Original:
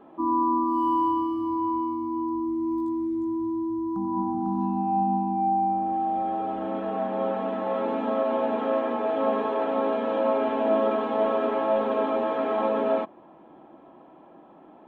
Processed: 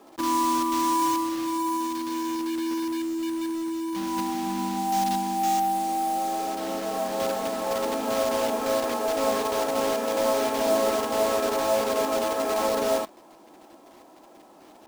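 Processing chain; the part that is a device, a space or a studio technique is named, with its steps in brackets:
early digital voice recorder (band-pass filter 240–3,500 Hz; one scale factor per block 3 bits)

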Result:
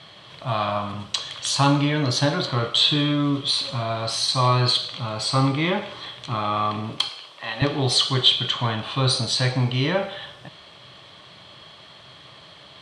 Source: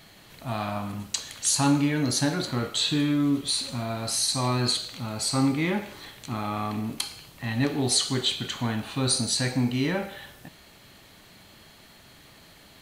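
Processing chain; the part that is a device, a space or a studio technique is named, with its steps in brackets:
car door speaker (loudspeaker in its box 90–7,500 Hz, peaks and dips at 130 Hz +6 dB, 240 Hz −9 dB, 590 Hz +6 dB, 1,100 Hz +9 dB, 3,300 Hz +10 dB, 6,800 Hz −9 dB)
0:07.09–0:07.62: high-pass filter 400 Hz 12 dB per octave
level +3 dB

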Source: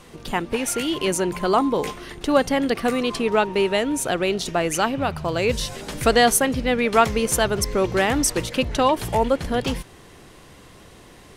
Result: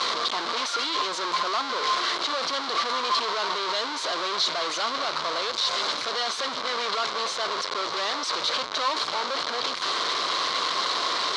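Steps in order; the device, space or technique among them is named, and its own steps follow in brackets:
home computer beeper (sign of each sample alone; loudspeaker in its box 770–5,100 Hz, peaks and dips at 800 Hz −6 dB, 1,100 Hz +7 dB, 1,800 Hz −6 dB, 2,600 Hz −8 dB, 4,100 Hz +7 dB)

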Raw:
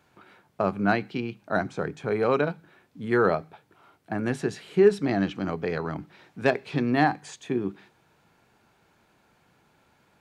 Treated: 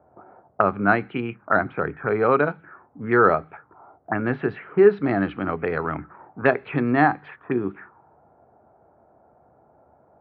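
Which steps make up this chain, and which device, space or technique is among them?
envelope filter bass rig (envelope-controlled low-pass 660–4,400 Hz up, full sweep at −24 dBFS; loudspeaker in its box 65–2,100 Hz, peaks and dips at 71 Hz +8 dB, 180 Hz −5 dB, 1,300 Hz +6 dB)
level +3.5 dB

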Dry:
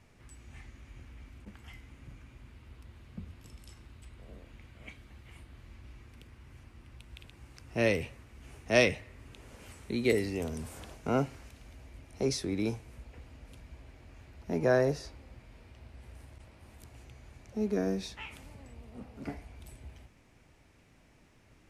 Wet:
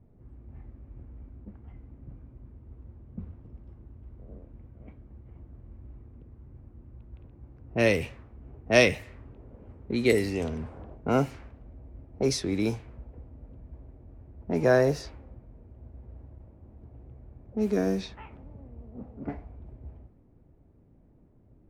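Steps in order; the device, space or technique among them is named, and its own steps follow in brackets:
cassette deck with a dynamic noise filter (white noise bed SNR 27 dB; low-pass that shuts in the quiet parts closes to 380 Hz, open at −26.5 dBFS)
level +4.5 dB

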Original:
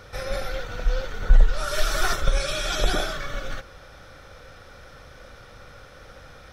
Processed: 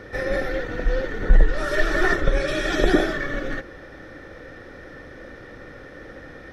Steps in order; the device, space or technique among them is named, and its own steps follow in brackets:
0:01.75–0:02.48: high-shelf EQ 6,000 Hz −8 dB
inside a helmet (high-shelf EQ 4,100 Hz −8.5 dB; hollow resonant body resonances 310/1,800 Hz, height 16 dB, ringing for 20 ms)

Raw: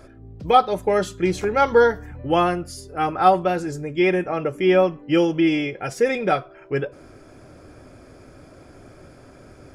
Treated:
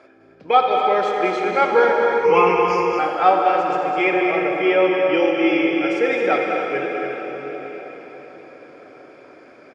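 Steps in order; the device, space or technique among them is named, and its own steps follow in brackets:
station announcement (band-pass filter 370–3,700 Hz; parametric band 2,300 Hz +7 dB 0.26 octaves; loudspeakers that aren't time-aligned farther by 71 metres −8 dB, 95 metres −10 dB; convolution reverb RT60 5.2 s, pre-delay 44 ms, DRR 1.5 dB)
0:02.24–0:02.99: EQ curve with evenly spaced ripples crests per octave 0.8, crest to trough 18 dB

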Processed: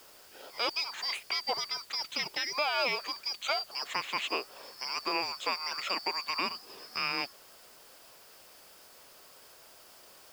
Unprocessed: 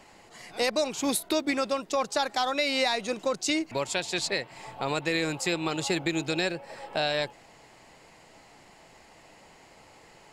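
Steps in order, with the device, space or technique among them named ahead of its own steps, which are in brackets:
split-band scrambled radio (band-splitting scrambler in four parts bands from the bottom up 2341; band-pass filter 350–3,200 Hz; white noise bed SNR 21 dB)

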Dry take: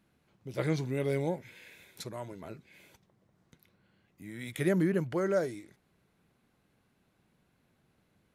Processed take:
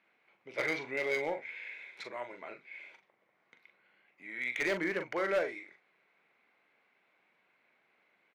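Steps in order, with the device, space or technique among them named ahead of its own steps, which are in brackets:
megaphone (band-pass filter 570–2,900 Hz; parametric band 2,200 Hz +11.5 dB 0.41 octaves; hard clipping −28.5 dBFS, distortion −14 dB; double-tracking delay 41 ms −8 dB)
level +2.5 dB

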